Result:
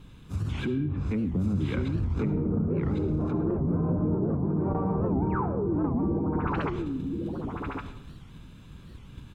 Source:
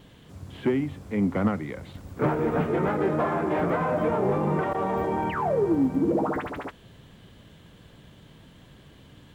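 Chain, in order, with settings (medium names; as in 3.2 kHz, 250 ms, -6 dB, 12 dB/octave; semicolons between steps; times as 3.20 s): 1.88–2.37 s: median filter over 25 samples; gate -47 dBFS, range -11 dB; low-pass that closes with the level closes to 370 Hz, closed at -21.5 dBFS; bass shelf 78 Hz +11.5 dB; comb 0.8 ms, depth 54%; in parallel at +2 dB: compression, threshold -33 dBFS, peak gain reduction 17 dB; on the sum: peak limiter -22 dBFS, peak gain reduction 13 dB; delay 1102 ms -4 dB; algorithmic reverb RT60 0.78 s, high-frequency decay 0.7×, pre-delay 30 ms, DRR 10 dB; warped record 78 rpm, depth 250 cents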